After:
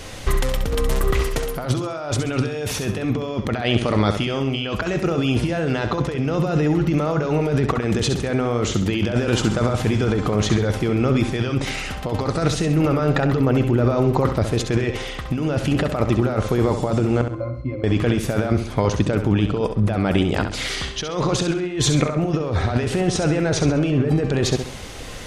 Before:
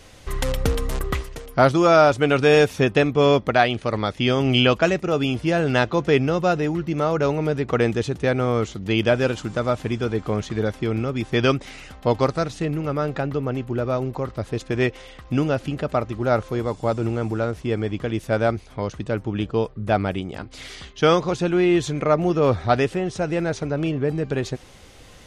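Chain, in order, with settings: 17.21–17.84 s: pitch-class resonator C, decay 0.19 s; compressor with a negative ratio -27 dBFS, ratio -1; flutter echo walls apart 11.4 m, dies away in 0.5 s; trim +6 dB

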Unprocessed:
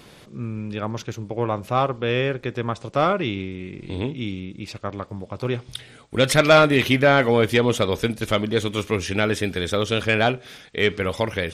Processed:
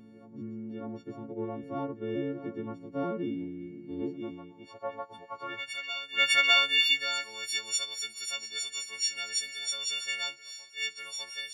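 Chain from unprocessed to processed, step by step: partials quantised in pitch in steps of 4 st; band-pass sweep 280 Hz -> 5.7 kHz, 3.87–7.34 s; reverse echo 603 ms -13.5 dB; trim -3 dB

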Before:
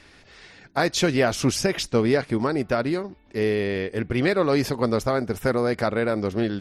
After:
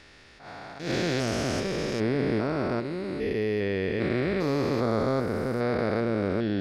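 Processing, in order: spectrogram pixelated in time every 400 ms; dynamic bell 10 kHz, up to -6 dB, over -52 dBFS, Q 0.79; attacks held to a fixed rise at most 110 dB/s

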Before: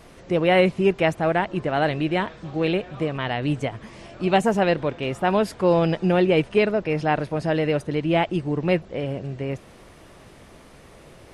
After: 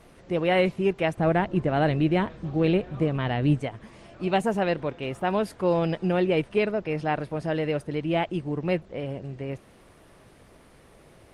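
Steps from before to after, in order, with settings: 1.17–3.58 s: bass shelf 400 Hz +9 dB; trim -4.5 dB; Opus 32 kbps 48 kHz

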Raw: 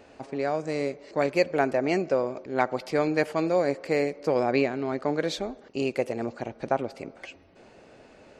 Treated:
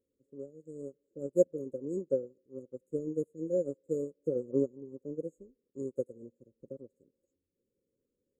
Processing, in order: brick-wall FIR band-stop 570–6500 Hz; upward expansion 2.5:1, over -39 dBFS; trim +1 dB

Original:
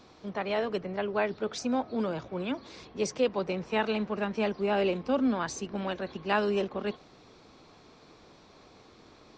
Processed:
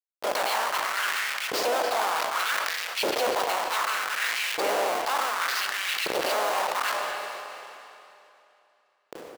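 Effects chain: spectral peaks clipped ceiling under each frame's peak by 26 dB; hum notches 50/100/150/200/250/300/350/400/450 Hz; low-pass that closes with the level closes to 1.6 kHz, closed at -23.5 dBFS; peaking EQ 4.8 kHz +12 dB 0.63 oct; band-stop 2.5 kHz, Q 17; in parallel at +1 dB: compression 4:1, threshold -36 dBFS, peak gain reduction 11.5 dB; on the sum: Schmitt trigger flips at -30.5 dBFS; LFO high-pass saw up 0.66 Hz 430–2600 Hz; speakerphone echo 260 ms, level -19 dB; on a send at -13 dB: reverberation RT60 3.4 s, pre-delay 27 ms; on the sum: decay stretcher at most 21 dB/s; trim +2 dB

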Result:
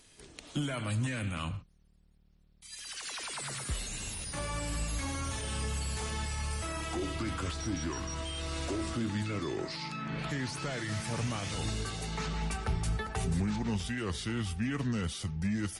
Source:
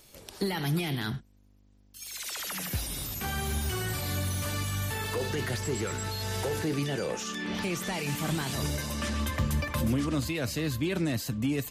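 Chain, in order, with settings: speed mistake 45 rpm record played at 33 rpm; trim -3.5 dB

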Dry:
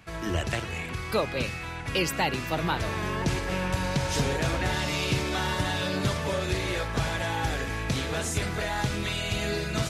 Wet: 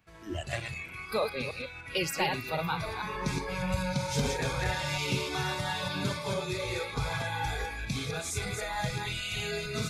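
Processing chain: chunks repeated in reverse 151 ms, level -3 dB; spectral noise reduction 12 dB; trim -4 dB

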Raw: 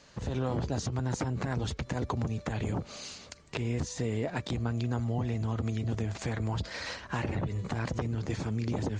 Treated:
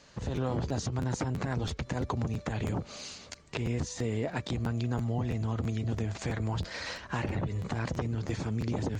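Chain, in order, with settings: crackling interface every 0.33 s, samples 512, repeat, from 0.35 s

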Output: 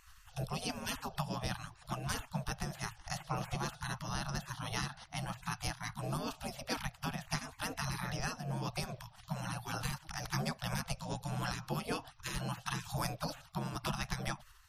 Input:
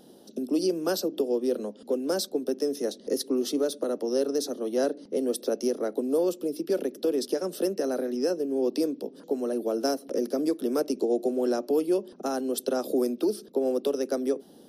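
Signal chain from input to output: spectral gate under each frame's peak -30 dB weak; RIAA curve playback; compression, threshold -48 dBFS, peak gain reduction 7 dB; random flutter of the level, depth 60%; trim +18 dB

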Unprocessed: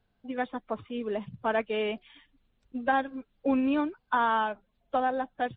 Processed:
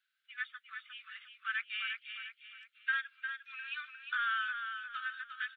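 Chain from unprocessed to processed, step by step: steep high-pass 1.3 kHz 96 dB/octave; on a send: feedback delay 354 ms, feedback 38%, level -7 dB

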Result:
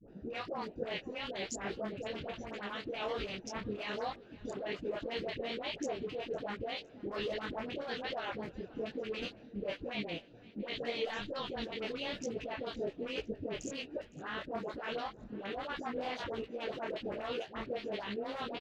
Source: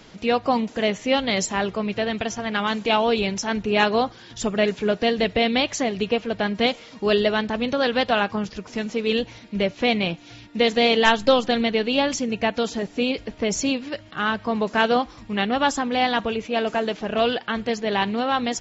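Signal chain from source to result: local Wiener filter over 41 samples; low-pass 2.5 kHz 6 dB/octave; peaking EQ 470 Hz +5 dB 0.65 oct; harmonic-percussive split harmonic -16 dB; tilt EQ +1.5 dB/octave; peak limiter -30.5 dBFS, peak gain reduction 20.5 dB; phase dispersion highs, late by 84 ms, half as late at 690 Hz; on a send: feedback delay 510 ms, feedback 48%, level -22 dB; on the sum: detune thickener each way 42 cents; trim +5.5 dB

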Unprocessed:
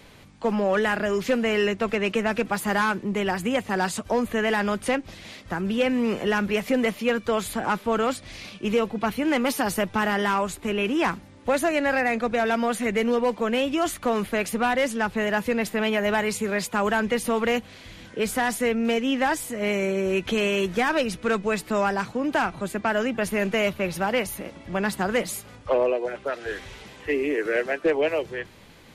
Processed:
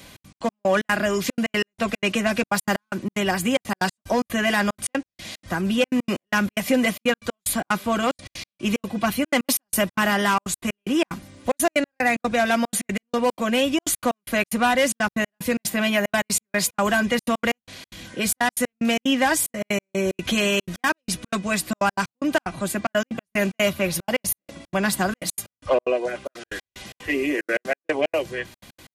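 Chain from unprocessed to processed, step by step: treble shelf 4.3 kHz +10.5 dB; comb of notches 440 Hz; trance gate "xx.x.x..xx.xxx" 185 bpm -60 dB; trim +3.5 dB

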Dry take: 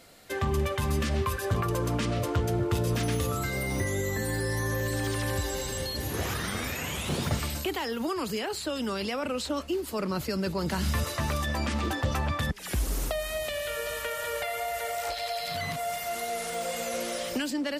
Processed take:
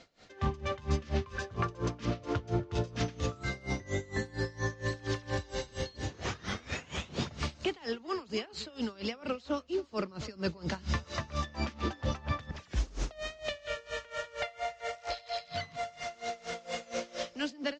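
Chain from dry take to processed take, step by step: steep low-pass 6.7 kHz 48 dB/octave; delay 280 ms -15.5 dB; logarithmic tremolo 4.3 Hz, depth 23 dB

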